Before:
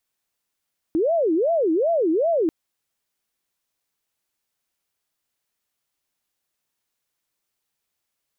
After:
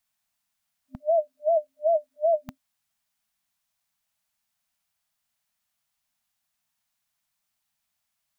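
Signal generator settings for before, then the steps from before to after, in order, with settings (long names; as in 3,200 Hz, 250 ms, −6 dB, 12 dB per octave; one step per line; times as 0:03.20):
siren wail 314–680 Hz 2.6 per second sine −17 dBFS 1.54 s
brick-wall band-stop 260–600 Hz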